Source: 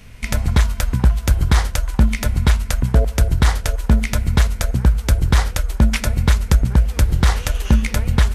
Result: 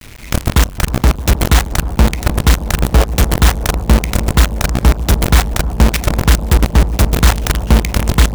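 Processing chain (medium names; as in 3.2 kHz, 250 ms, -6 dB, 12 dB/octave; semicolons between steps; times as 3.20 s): treble shelf 8.5 kHz -2.5 dB; band-stop 4.7 kHz, Q 8.5; companded quantiser 2-bit; on a send: bucket-brigade echo 311 ms, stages 2048, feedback 83%, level -13 dB; on the sum: trim -4.5 dB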